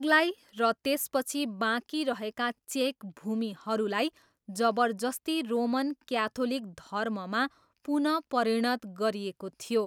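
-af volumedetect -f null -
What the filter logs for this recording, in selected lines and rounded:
mean_volume: -30.2 dB
max_volume: -11.2 dB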